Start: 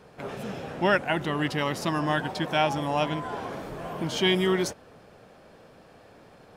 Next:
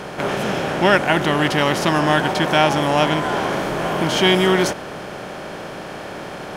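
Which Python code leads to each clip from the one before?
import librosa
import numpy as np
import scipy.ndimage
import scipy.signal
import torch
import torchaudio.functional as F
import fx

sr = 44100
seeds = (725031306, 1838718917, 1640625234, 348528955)

y = fx.bin_compress(x, sr, power=0.6)
y = y * librosa.db_to_amplitude(6.0)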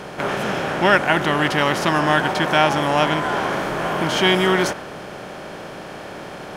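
y = fx.dynamic_eq(x, sr, hz=1400.0, q=0.89, threshold_db=-31.0, ratio=4.0, max_db=4)
y = y * librosa.db_to_amplitude(-2.5)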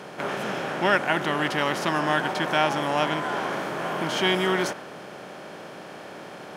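y = scipy.signal.sosfilt(scipy.signal.butter(2, 140.0, 'highpass', fs=sr, output='sos'), x)
y = y * librosa.db_to_amplitude(-6.0)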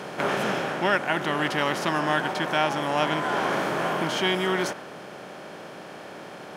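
y = fx.rider(x, sr, range_db=4, speed_s=0.5)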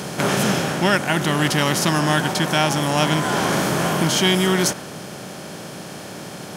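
y = fx.bass_treble(x, sr, bass_db=12, treble_db=15)
y = y * librosa.db_to_amplitude(3.0)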